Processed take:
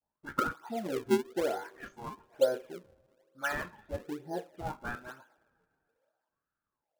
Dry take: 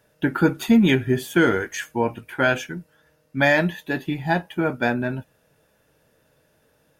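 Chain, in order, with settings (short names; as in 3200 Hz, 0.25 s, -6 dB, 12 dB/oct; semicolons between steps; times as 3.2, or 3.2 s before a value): spectral delay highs late, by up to 0.172 s; gate -50 dBFS, range -12 dB; wah 0.65 Hz 400–1300 Hz, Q 13; two-slope reverb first 0.25 s, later 2.6 s, from -21 dB, DRR 14 dB; in parallel at -4 dB: decimation with a swept rate 41×, swing 160% 1.1 Hz; on the sum: gain +2.5 dB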